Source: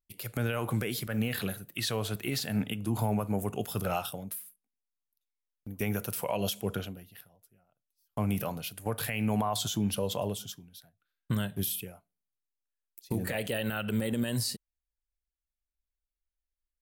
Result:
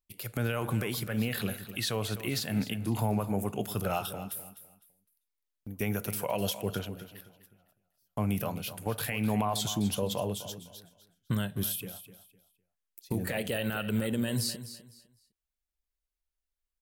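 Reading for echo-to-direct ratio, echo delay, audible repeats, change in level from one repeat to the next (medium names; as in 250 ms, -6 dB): -12.5 dB, 253 ms, 2, -11.5 dB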